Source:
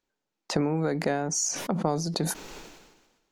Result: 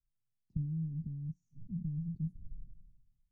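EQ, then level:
inverse Chebyshev low-pass filter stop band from 520 Hz, stop band 70 dB
+7.0 dB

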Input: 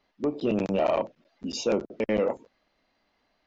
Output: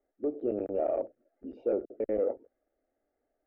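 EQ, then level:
low-pass filter 1,300 Hz 24 dB per octave
low-shelf EQ 190 Hz −6 dB
phaser with its sweep stopped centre 420 Hz, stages 4
−1.5 dB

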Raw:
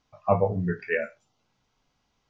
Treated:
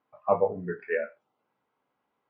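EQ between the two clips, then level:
band-pass filter 440–2,000 Hz
spectral tilt −2.5 dB per octave
parametric band 690 Hz −4.5 dB 0.29 octaves
0.0 dB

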